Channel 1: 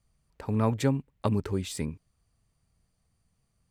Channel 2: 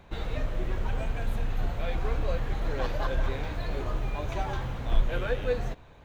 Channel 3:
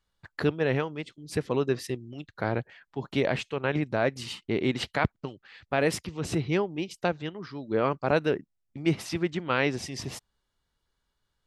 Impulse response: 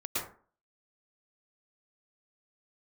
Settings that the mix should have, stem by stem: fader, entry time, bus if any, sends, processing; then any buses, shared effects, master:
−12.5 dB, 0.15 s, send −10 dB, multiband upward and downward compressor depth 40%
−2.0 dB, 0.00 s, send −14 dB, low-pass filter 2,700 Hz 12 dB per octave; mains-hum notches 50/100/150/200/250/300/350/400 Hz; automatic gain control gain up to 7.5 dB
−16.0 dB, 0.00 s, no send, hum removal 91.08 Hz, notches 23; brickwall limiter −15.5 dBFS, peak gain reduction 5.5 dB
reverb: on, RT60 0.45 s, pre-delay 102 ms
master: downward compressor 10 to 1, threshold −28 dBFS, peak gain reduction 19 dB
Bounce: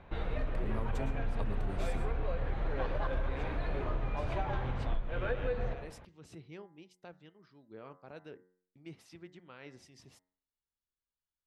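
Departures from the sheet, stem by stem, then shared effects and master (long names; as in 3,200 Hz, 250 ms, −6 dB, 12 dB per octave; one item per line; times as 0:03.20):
stem 2: missing automatic gain control gain up to 7.5 dB
stem 3 −16.0 dB → −22.0 dB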